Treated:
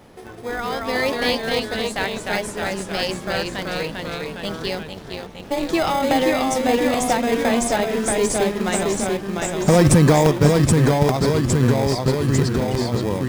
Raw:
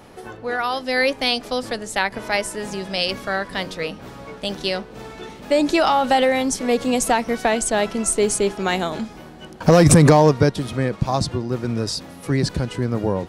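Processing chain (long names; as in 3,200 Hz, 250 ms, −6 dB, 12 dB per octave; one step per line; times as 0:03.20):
delay with pitch and tempo change per echo 186 ms, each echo −1 semitone, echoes 3
in parallel at −6.5 dB: decimation without filtering 31×
0:04.88–0:05.69: on the sum: amplitude modulation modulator 280 Hz, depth 80%
regular buffer underruns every 0.83 s, samples 64, repeat, from 0:00.30
level −4.5 dB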